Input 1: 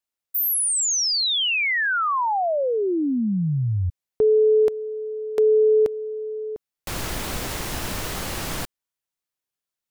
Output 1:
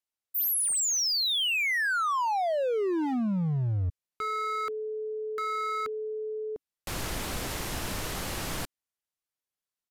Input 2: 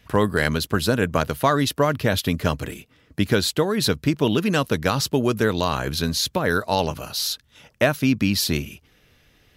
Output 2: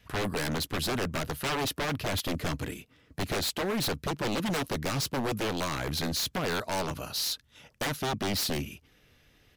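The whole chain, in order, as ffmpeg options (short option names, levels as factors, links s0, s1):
-af "aresample=32000,aresample=44100,adynamicequalizer=threshold=0.0112:dfrequency=280:dqfactor=7.3:tfrequency=280:tqfactor=7.3:attack=5:release=100:ratio=0.375:range=2:mode=boostabove:tftype=bell,aeval=exprs='0.1*(abs(mod(val(0)/0.1+3,4)-2)-1)':c=same,volume=0.596"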